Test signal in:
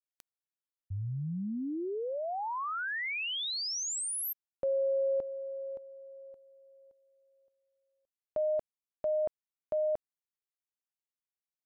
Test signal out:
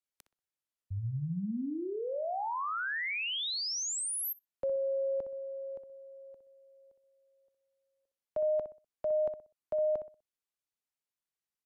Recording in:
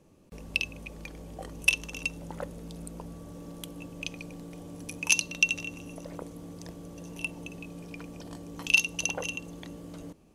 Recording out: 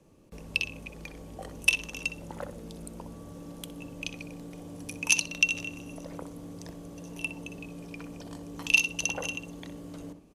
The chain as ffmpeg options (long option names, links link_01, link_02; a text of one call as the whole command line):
ffmpeg -i in.wav -filter_complex "[0:a]acrossover=split=330|430|2800[link_01][link_02][link_03][link_04];[link_02]alimiter=level_in=22dB:limit=-24dB:level=0:latency=1,volume=-22dB[link_05];[link_01][link_05][link_03][link_04]amix=inputs=4:normalize=0,aresample=32000,aresample=44100,asplit=2[link_06][link_07];[link_07]adelay=62,lowpass=frequency=2000:poles=1,volume=-8.5dB,asplit=2[link_08][link_09];[link_09]adelay=62,lowpass=frequency=2000:poles=1,volume=0.3,asplit=2[link_10][link_11];[link_11]adelay=62,lowpass=frequency=2000:poles=1,volume=0.3,asplit=2[link_12][link_13];[link_13]adelay=62,lowpass=frequency=2000:poles=1,volume=0.3[link_14];[link_06][link_08][link_10][link_12][link_14]amix=inputs=5:normalize=0" out.wav